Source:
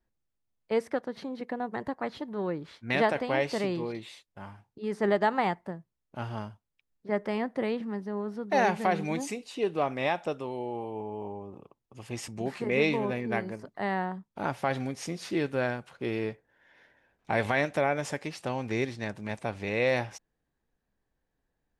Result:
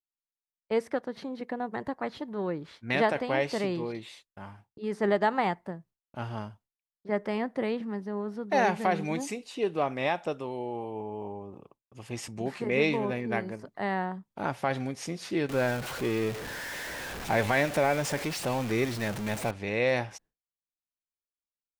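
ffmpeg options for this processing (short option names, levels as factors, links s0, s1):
-filter_complex "[0:a]asettb=1/sr,asplit=3[s0][s1][s2];[s0]atrim=end=15.494[s3];[s1]atrim=start=15.49:end=19.51,asetpts=PTS-STARTPTS,afade=t=in:d=0.004:c=qsin,afade=t=out:st=4.016:d=0.004:c=qsin,aeval=exprs='val(0)+0.5*0.0251*sgn(val(0))':c=same[s4];[s2]atrim=start=19.506[s5];[s3][s4]acrossfade=d=0.004:c1=hsin:c2=qsin[s6];[s6][s5]acrossfade=d=0.004:c1=qsin:c2=hsin,agate=range=0.0224:threshold=0.00224:ratio=3:detection=peak"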